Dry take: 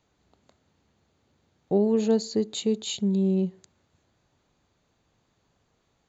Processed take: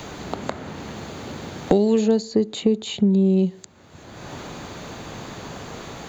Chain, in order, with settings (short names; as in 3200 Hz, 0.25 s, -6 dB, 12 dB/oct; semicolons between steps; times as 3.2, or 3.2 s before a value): three-band squash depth 100%; gain +6 dB